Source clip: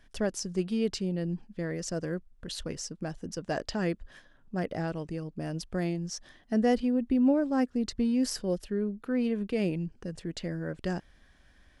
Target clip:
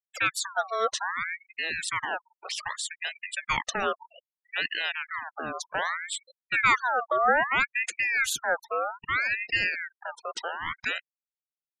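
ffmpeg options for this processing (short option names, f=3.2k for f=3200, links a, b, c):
-af "bass=f=250:g=-11,treble=f=4k:g=1,afftfilt=real='re*gte(hypot(re,im),0.0126)':imag='im*gte(hypot(re,im),0.0126)':win_size=1024:overlap=0.75,aeval=exprs='val(0)*sin(2*PI*1600*n/s+1600*0.45/0.63*sin(2*PI*0.63*n/s))':c=same,volume=8dB"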